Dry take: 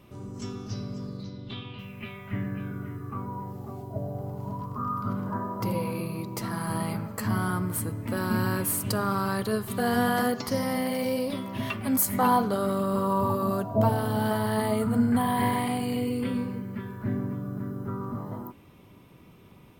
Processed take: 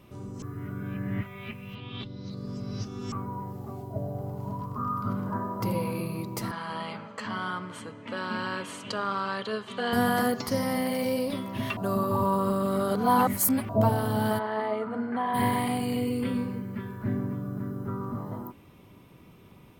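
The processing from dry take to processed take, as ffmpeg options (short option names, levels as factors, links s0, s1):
-filter_complex "[0:a]asettb=1/sr,asplit=3[s0][s1][s2];[s0]atrim=end=6.514[s3];[s1]atrim=start=6.51:end=9.93,asetpts=PTS-STARTPTS,afade=t=in:d=0.004:c=qsin,afade=t=out:st=3.416:d=0.004:c=qsin,highpass=310,equalizer=f=340:t=q:w=4:g=-9,equalizer=f=720:t=q:w=4:g=-4,equalizer=f=3100:t=q:w=4:g=8,equalizer=f=5200:t=q:w=4:g=-6,lowpass=f=6200:w=0.5412,lowpass=f=6200:w=1.3066[s4];[s2]atrim=start=9.926[s5];[s3][s4]acrossfade=d=0.004:c1=hsin:c2=qsin[s6];[s6][s5]acrossfade=d=0.004:c1=qsin:c2=hsin,asplit=3[s7][s8][s9];[s7]afade=t=out:st=14.38:d=0.02[s10];[s8]highpass=380,lowpass=2300,afade=t=in:st=14.38:d=0.02,afade=t=out:st=15.33:d=0.02[s11];[s9]afade=t=in:st=15.33:d=0.02[s12];[s10][s11][s12]amix=inputs=3:normalize=0,asplit=5[s13][s14][s15][s16][s17];[s13]atrim=end=0.422[s18];[s14]atrim=start=0.418:end=3.122,asetpts=PTS-STARTPTS,areverse[s19];[s15]atrim=start=3.118:end=11.772[s20];[s16]atrim=start=11.768:end=13.692,asetpts=PTS-STARTPTS,areverse[s21];[s17]atrim=start=13.688[s22];[s18][s19]acrossfade=d=0.004:c1=hsin:c2=hsin[s23];[s23][s20]acrossfade=d=0.004:c1=hsin:c2=hsin[s24];[s24][s21]acrossfade=d=0.004:c1=hsin:c2=hsin[s25];[s25][s22]acrossfade=d=0.004:c1=hsin:c2=hsin"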